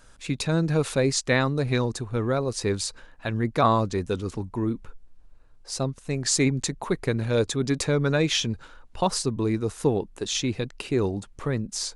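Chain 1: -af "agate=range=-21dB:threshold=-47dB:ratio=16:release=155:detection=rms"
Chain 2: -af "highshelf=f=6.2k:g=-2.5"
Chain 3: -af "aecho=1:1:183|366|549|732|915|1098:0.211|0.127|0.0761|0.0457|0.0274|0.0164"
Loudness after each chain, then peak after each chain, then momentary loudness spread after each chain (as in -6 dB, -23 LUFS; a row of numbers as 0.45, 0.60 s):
-26.0, -26.0, -25.5 LUFS; -8.0, -8.0, -8.0 dBFS; 8, 8, 9 LU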